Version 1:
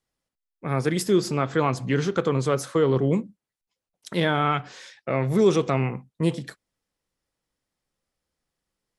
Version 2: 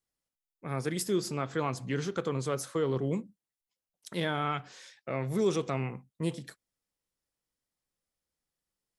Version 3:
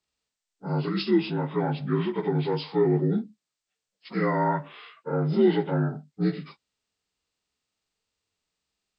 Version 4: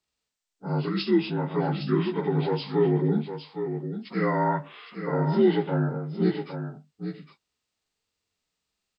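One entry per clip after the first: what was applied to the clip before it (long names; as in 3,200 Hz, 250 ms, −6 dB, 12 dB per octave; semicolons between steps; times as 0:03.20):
high-shelf EQ 6,000 Hz +8 dB; level −9 dB
partials spread apart or drawn together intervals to 79%; harmonic and percussive parts rebalanced harmonic +7 dB; level +2 dB
single-tap delay 811 ms −8.5 dB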